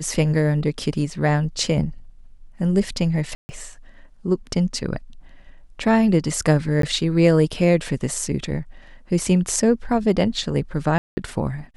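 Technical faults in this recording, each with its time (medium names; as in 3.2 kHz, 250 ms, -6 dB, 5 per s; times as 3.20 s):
3.35–3.49 s: dropout 140 ms
6.82–6.83 s: dropout 13 ms
10.98–11.17 s: dropout 190 ms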